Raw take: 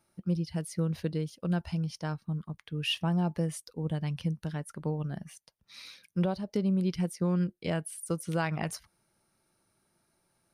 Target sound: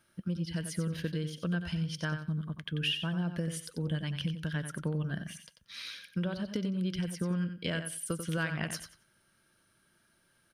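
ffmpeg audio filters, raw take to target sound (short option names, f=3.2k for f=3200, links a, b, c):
-filter_complex "[0:a]equalizer=f=400:t=o:w=0.33:g=-3,equalizer=f=800:t=o:w=0.33:g=-10,equalizer=f=1.6k:t=o:w=0.33:g=11,equalizer=f=3.15k:t=o:w=0.33:g=10,acompressor=threshold=-32dB:ratio=6,asplit=2[a][b];[b]aecho=0:1:91|182|273:0.376|0.0752|0.015[c];[a][c]amix=inputs=2:normalize=0,volume=2dB"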